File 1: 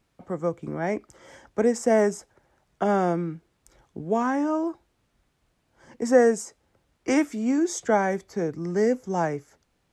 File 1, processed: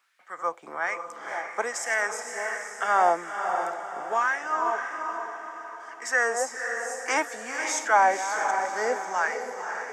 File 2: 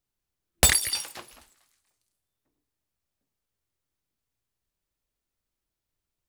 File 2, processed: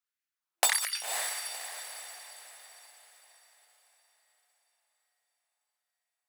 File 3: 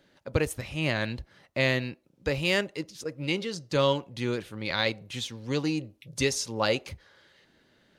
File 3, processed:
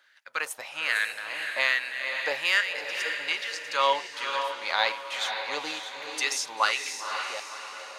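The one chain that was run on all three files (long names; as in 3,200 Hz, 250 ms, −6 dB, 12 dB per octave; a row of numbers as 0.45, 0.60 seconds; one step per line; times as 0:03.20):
delay that plays each chunk backwards 370 ms, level −11 dB
auto-filter high-pass sine 1.2 Hz 790–1,800 Hz
feedback delay with all-pass diffusion 527 ms, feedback 45%, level −6 dB
normalise the peak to −9 dBFS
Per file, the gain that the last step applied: +2.5, −6.5, +0.5 decibels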